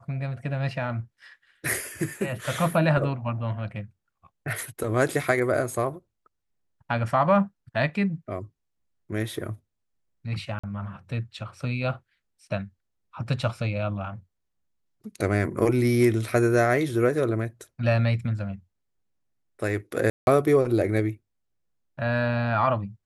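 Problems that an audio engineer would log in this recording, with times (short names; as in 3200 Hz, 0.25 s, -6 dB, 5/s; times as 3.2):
10.59–10.63 gap 45 ms
20.1–20.27 gap 0.171 s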